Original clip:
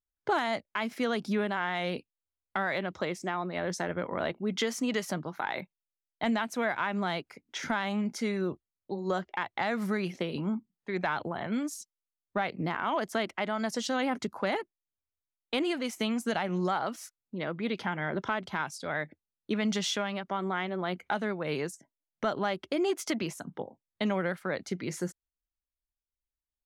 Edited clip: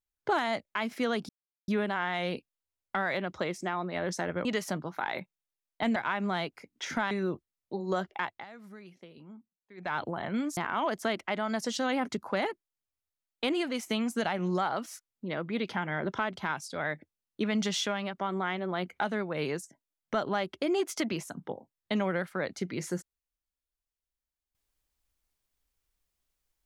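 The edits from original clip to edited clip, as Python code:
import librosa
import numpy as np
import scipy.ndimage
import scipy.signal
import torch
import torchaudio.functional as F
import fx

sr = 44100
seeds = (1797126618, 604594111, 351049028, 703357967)

y = fx.edit(x, sr, fx.insert_silence(at_s=1.29, length_s=0.39),
    fx.cut(start_s=4.06, length_s=0.8),
    fx.cut(start_s=6.37, length_s=0.32),
    fx.cut(start_s=7.84, length_s=0.45),
    fx.fade_down_up(start_s=9.43, length_s=1.72, db=-18.0, fade_s=0.2),
    fx.cut(start_s=11.75, length_s=0.92), tone=tone)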